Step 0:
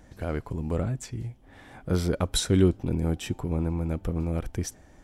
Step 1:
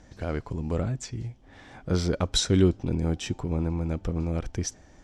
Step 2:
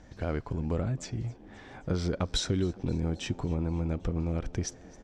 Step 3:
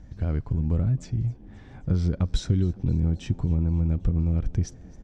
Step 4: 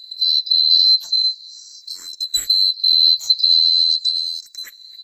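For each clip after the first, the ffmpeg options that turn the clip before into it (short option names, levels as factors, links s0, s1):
-af "lowpass=f=6000:t=q:w=1.7"
-filter_complex "[0:a]highshelf=f=7600:g=-10,acompressor=threshold=0.0562:ratio=6,asplit=6[s0][s1][s2][s3][s4][s5];[s1]adelay=265,afreqshift=92,volume=0.0708[s6];[s2]adelay=530,afreqshift=184,volume=0.0447[s7];[s3]adelay=795,afreqshift=276,volume=0.0282[s8];[s4]adelay=1060,afreqshift=368,volume=0.0178[s9];[s5]adelay=1325,afreqshift=460,volume=0.0111[s10];[s0][s6][s7][s8][s9][s10]amix=inputs=6:normalize=0"
-af "bass=f=250:g=15,treble=f=4000:g=0,volume=0.531"
-filter_complex "[0:a]afftfilt=real='real(if(lt(b,736),b+184*(1-2*mod(floor(b/184),2)),b),0)':imag='imag(if(lt(b,736),b+184*(1-2*mod(floor(b/184),2)),b),0)':win_size=2048:overlap=0.75,aexciter=amount=5.7:drive=5.5:freq=4400,asplit=2[s0][s1];[s1]afreqshift=0.4[s2];[s0][s2]amix=inputs=2:normalize=1,volume=1.26"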